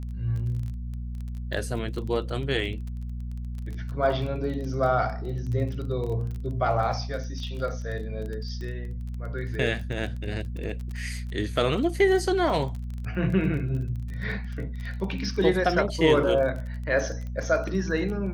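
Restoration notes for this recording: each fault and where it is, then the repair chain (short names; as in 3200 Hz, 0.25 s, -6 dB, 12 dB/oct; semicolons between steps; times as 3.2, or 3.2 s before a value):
crackle 21/s -33 dBFS
hum 60 Hz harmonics 4 -33 dBFS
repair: de-click; de-hum 60 Hz, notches 4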